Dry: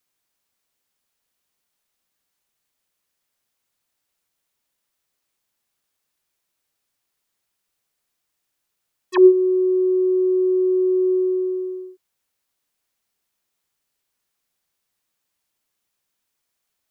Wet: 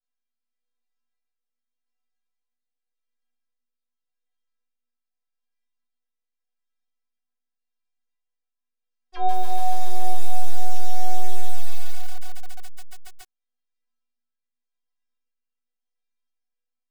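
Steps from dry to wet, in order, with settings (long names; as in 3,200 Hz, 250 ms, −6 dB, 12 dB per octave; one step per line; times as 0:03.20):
rotating-speaker cabinet horn 0.85 Hz
half-wave rectification
high-frequency loss of the air 110 metres
stiff-string resonator 240 Hz, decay 0.45 s, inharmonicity 0.008
feedback echo at a low word length 140 ms, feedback 80%, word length 8 bits, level −3.5 dB
level +9 dB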